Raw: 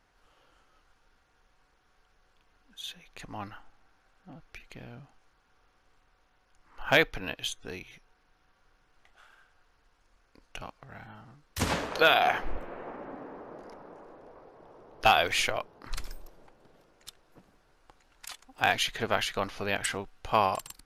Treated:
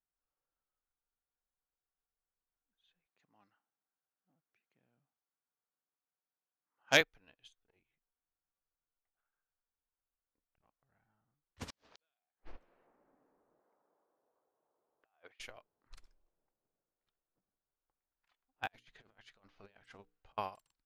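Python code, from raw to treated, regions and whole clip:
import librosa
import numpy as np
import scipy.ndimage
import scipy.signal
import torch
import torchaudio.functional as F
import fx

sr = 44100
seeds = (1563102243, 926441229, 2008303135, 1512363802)

y = fx.chain(x, sr, fx.highpass(hz=130.0, slope=24),
    fx.peak_eq(hz=6200.0, db=13.5, octaves=0.99), at=(3.06, 7.01))
y = fx.chain(y, sr, fx.doubler(ms=13.0, db=-10.5),
    fx.transformer_sat(knee_hz=550.0), at=(7.63, 10.67))
y = fx.chain(y, sr, fx.peak_eq(hz=5100.0, db=12.5, octaves=1.6),
    fx.gate_flip(shuts_db=-13.0, range_db=-40), at=(11.68, 12.87))
y = fx.chain(y, sr, fx.highpass(hz=760.0, slope=6),
    fx.over_compress(threshold_db=-33.0, ratio=-0.5),
    fx.spacing_loss(db_at_10k=31), at=(13.59, 15.4))
y = fx.chain(y, sr, fx.over_compress(threshold_db=-34.0, ratio=-0.5),
    fx.hum_notches(base_hz=60, count=8), at=(18.67, 20.38))
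y = fx.env_lowpass(y, sr, base_hz=1700.0, full_db=-26.0)
y = fx.upward_expand(y, sr, threshold_db=-36.0, expansion=2.5)
y = F.gain(torch.from_numpy(y), -4.0).numpy()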